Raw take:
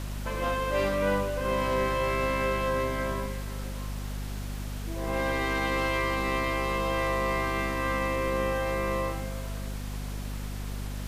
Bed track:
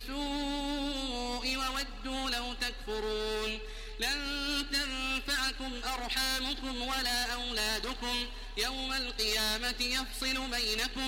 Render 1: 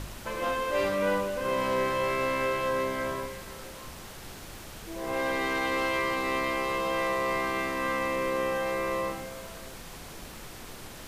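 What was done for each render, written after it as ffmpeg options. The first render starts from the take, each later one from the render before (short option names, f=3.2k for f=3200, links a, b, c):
-af "bandreject=f=50:t=h:w=4,bandreject=f=100:t=h:w=4,bandreject=f=150:t=h:w=4,bandreject=f=200:t=h:w=4,bandreject=f=250:t=h:w=4"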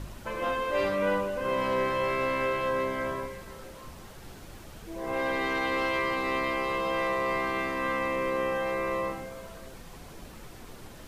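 -af "afftdn=nr=7:nf=-44"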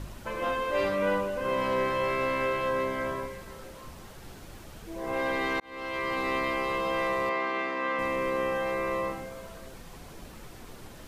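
-filter_complex "[0:a]asettb=1/sr,asplit=3[a][b][c];[a]atrim=end=7.294[d];[b]atrim=start=7.29:end=7.99,asetpts=PTS-STARTPTS,afade=t=in:d=0.004:c=qsin,afade=t=out:st=0.696:d=0.004:c=qsin,highpass=270,lowpass=4.6k[e];[c]atrim=start=7.986[f];[d][e]acrossfade=d=0.004:c1=hsin:c2=qsin[g];[g][f]acrossfade=d=0.004:c1=qsin:c2=hsin,asplit=2[h][i];[h]atrim=end=5.6,asetpts=PTS-STARTPTS,afade=t=out:st=5.596:d=0.004:c=hsin[j];[i]atrim=start=5.6,asetpts=PTS-STARTPTS,afade=t=in:d=0.6[k];[j][k]concat=n=2:v=0:a=1"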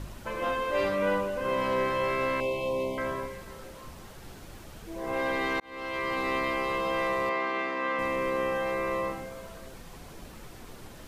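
-filter_complex "[0:a]asettb=1/sr,asplit=3[a][b][c];[a]atrim=end=2.404[d];[b]atrim=start=2.4:end=2.98,asetpts=PTS-STARTPTS,afade=t=in:d=0.004:c=qsin,afade=t=out:st=0.576:d=0.004:c=qsin,asuperstop=centerf=1500:order=12:qfactor=1.2[e];[c]atrim=start=2.976[f];[d][e]acrossfade=d=0.004:c1=hsin:c2=qsin[g];[g][f]acrossfade=d=0.004:c1=qsin:c2=hsin"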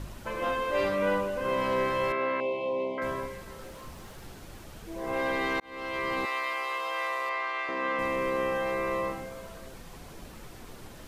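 -filter_complex "[0:a]asettb=1/sr,asplit=3[a][b][c];[a]atrim=end=2.124[d];[b]atrim=start=2.12:end=3.02,asetpts=PTS-STARTPTS,afade=t=in:d=0.004:c=qsin,afade=t=out:st=0.896:d=0.004:c=qsin,highpass=230,lowpass=2.7k[e];[c]atrim=start=3.016[f];[d][e]acrossfade=d=0.004:c1=hsin:c2=qsin[g];[g][f]acrossfade=d=0.004:c1=qsin:c2=hsin,asettb=1/sr,asplit=3[h][i][j];[h]atrim=end=3.594[k];[i]atrim=start=3.59:end=4.27,asetpts=PTS-STARTPTS,afade=t=in:d=0.004:c=qsin,afade=t=out:st=0.676:d=0.004:c=qsin,aeval=exprs='val(0)+0.5*0.00126*sgn(val(0))':c=same[l];[j]atrim=start=4.266[m];[k][l]acrossfade=d=0.004:c1=hsin:c2=qsin[n];[n][m]acrossfade=d=0.004:c1=qsin:c2=hsin,asettb=1/sr,asplit=3[o][p][q];[o]atrim=end=6.254[r];[p]atrim=start=6.25:end=7.69,asetpts=PTS-STARTPTS,afade=t=in:d=0.004:c=qsin,afade=t=out:st=1.436:d=0.004:c=qsin,highpass=810[s];[q]atrim=start=7.686[t];[r][s]acrossfade=d=0.004:c1=hsin:c2=qsin[u];[u][t]acrossfade=d=0.004:c1=qsin:c2=hsin"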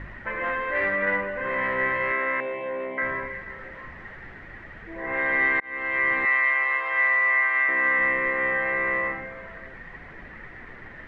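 -af "asoftclip=type=tanh:threshold=-24.5dB,lowpass=f=1.9k:t=q:w=11"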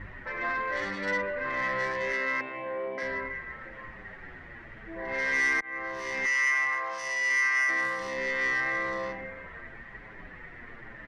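-filter_complex "[0:a]asoftclip=type=tanh:threshold=-20dB,asplit=2[a][b];[b]adelay=7.5,afreqshift=-0.98[c];[a][c]amix=inputs=2:normalize=1"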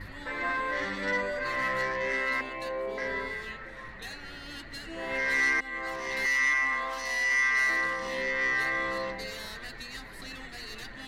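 -filter_complex "[1:a]volume=-11.5dB[a];[0:a][a]amix=inputs=2:normalize=0"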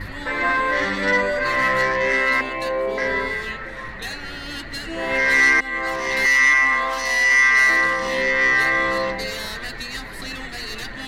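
-af "volume=10.5dB"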